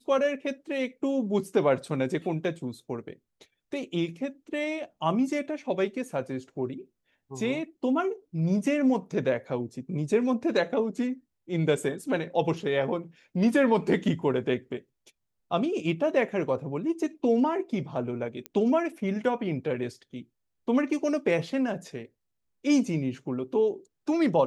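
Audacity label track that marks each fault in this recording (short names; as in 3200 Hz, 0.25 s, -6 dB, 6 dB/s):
18.460000	18.460000	pop -19 dBFS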